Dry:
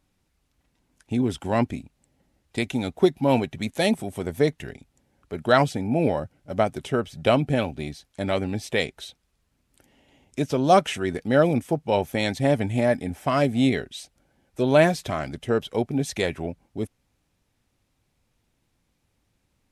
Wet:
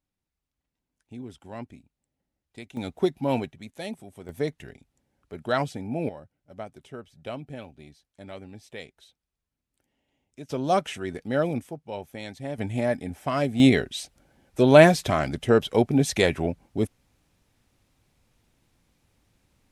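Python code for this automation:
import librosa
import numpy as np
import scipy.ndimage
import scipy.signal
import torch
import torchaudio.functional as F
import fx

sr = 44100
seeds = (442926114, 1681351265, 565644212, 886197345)

y = fx.gain(x, sr, db=fx.steps((0.0, -16.0), (2.77, -5.0), (3.51, -13.5), (4.29, -7.0), (6.09, -16.0), (10.49, -6.0), (11.69, -13.0), (12.58, -4.0), (13.6, 4.0)))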